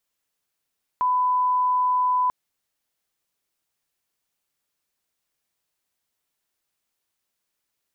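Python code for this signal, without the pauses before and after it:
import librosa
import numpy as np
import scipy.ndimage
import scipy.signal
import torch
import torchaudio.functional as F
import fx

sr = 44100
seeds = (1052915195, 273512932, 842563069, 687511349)

y = fx.lineup_tone(sr, length_s=1.29, level_db=-18.0)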